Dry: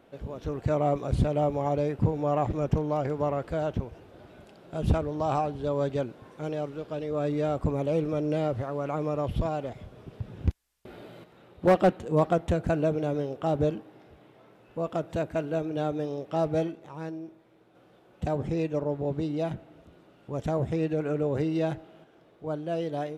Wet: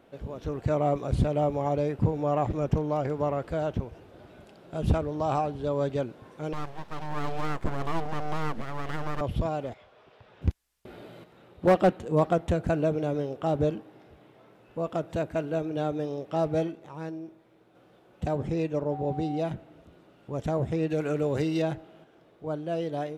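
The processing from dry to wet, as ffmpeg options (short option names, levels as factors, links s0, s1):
-filter_complex "[0:a]asettb=1/sr,asplit=3[s0][s1][s2];[s0]atrim=end=6.534[s3];[s1]atrim=start=6.53:end=9.21,asetpts=PTS-STARTPTS,afade=t=in:d=0.004:c=qsin,afade=t=out:st=2.676:d=0.004:c=qsin,aeval=exprs='abs(val(0))':c=same[s4];[s2]atrim=start=9.206[s5];[s3][s4]acrossfade=d=0.004:c1=hsin:c2=qsin[s6];[s6][s5]acrossfade=d=0.004:c1=qsin:c2=hsin,asettb=1/sr,asplit=3[s7][s8][s9];[s7]atrim=end=9.744[s10];[s8]atrim=start=9.74:end=10.42,asetpts=PTS-STARTPTS,afade=t=in:d=0.004:c=qsin,afade=t=out:st=0.676:d=0.004:c=qsin,acrossover=split=520 5100:gain=0.0794 1 0.158[s11][s12][s13];[s11][s12][s13]amix=inputs=3:normalize=0[s14];[s9]atrim=start=10.416[s15];[s10][s14]acrossfade=d=0.004:c1=hsin:c2=qsin[s16];[s16][s15]acrossfade=d=0.004:c1=qsin:c2=hsin,asettb=1/sr,asplit=3[s17][s18][s19];[s17]atrim=end=18.924[s20];[s18]atrim=start=18.92:end=19.4,asetpts=PTS-STARTPTS,afade=t=in:d=0.004:c=qsin,afade=t=out:st=0.476:d=0.004:c=qsin,aeval=exprs='val(0)+0.0158*sin(2*PI*760*n/s)':c=same[s21];[s19]atrim=start=19.396[s22];[s20][s21]acrossfade=d=0.004:c1=hsin:c2=qsin[s23];[s23][s22]acrossfade=d=0.004:c1=qsin:c2=hsin,asettb=1/sr,asplit=3[s24][s25][s26];[s24]atrim=end=20.904[s27];[s25]atrim=start=20.9:end=21.62,asetpts=PTS-STARTPTS,afade=t=in:d=0.004:c=qsin,afade=t=out:st=0.716:d=0.004:c=qsin,highshelf=f=2400:g=10[s28];[s26]atrim=start=21.616[s29];[s27][s28]acrossfade=d=0.004:c1=hsin:c2=qsin[s30];[s30][s29]acrossfade=d=0.004:c1=qsin:c2=hsin"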